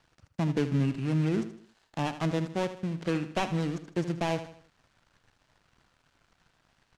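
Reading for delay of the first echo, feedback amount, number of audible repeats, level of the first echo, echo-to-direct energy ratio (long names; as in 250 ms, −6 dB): 78 ms, 41%, 3, −12.0 dB, −11.0 dB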